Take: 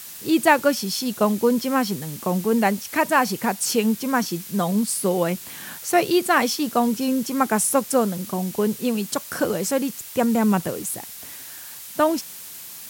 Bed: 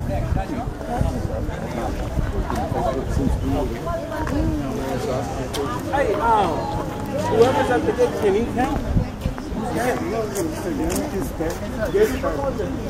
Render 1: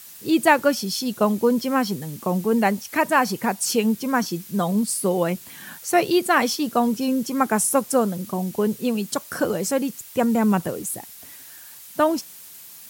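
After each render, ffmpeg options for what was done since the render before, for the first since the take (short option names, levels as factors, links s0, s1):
-af "afftdn=nr=6:nf=-39"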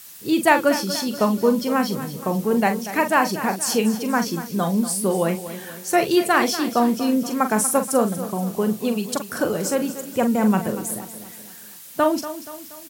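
-filter_complex "[0:a]asplit=2[s0][s1];[s1]adelay=42,volume=0.355[s2];[s0][s2]amix=inputs=2:normalize=0,aecho=1:1:238|476|714|952|1190:0.224|0.107|0.0516|0.0248|0.0119"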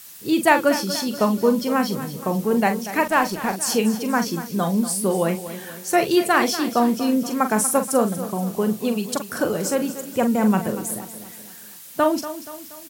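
-filter_complex "[0:a]asettb=1/sr,asplit=3[s0][s1][s2];[s0]atrim=end=3.034[s3];[s1]atrim=start=3.03:end=3.54,asetpts=PTS-STARTPTS,afade=t=in:d=0.004:c=qsin,afade=t=out:st=0.506:d=0.004:c=qsin,aeval=exprs='sgn(val(0))*max(abs(val(0))-0.0168,0)':c=same[s4];[s2]atrim=start=3.536[s5];[s3][s4]acrossfade=d=0.004:c1=hsin:c2=qsin[s6];[s6][s5]acrossfade=d=0.004:c1=qsin:c2=hsin"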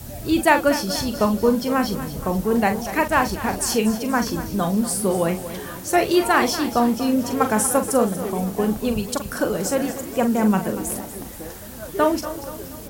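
-filter_complex "[1:a]volume=0.251[s0];[0:a][s0]amix=inputs=2:normalize=0"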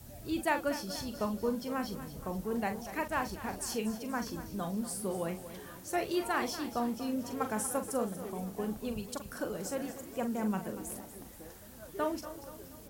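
-af "volume=0.188"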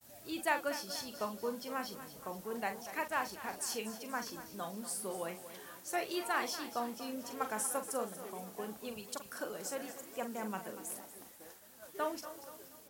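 -af "agate=range=0.0224:threshold=0.00447:ratio=3:detection=peak,highpass=f=670:p=1"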